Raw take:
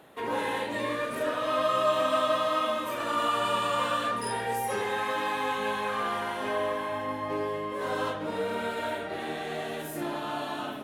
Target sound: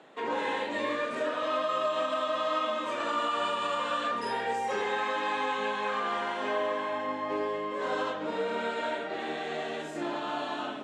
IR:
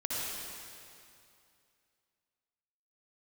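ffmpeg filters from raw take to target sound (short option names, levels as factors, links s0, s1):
-filter_complex "[0:a]lowpass=f=7600:t=q:w=4,alimiter=limit=0.1:level=0:latency=1:release=169,acrossover=split=170 4900:gain=0.1 1 0.1[s0][s1][s2];[s0][s1][s2]amix=inputs=3:normalize=0"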